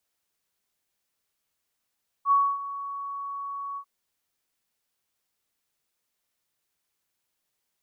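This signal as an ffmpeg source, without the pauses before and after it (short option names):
-f lavfi -i "aevalsrc='0.158*sin(2*PI*1120*t)':d=1.594:s=44100,afade=t=in:d=0.065,afade=t=out:st=0.065:d=0.264:silence=0.168,afade=t=out:st=1.52:d=0.074"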